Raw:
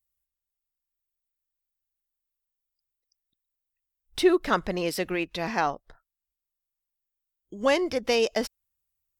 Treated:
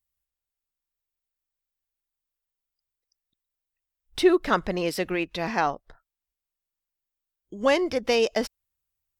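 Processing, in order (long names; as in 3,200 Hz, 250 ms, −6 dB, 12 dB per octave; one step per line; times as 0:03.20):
high-shelf EQ 6,000 Hz −4 dB
level +1.5 dB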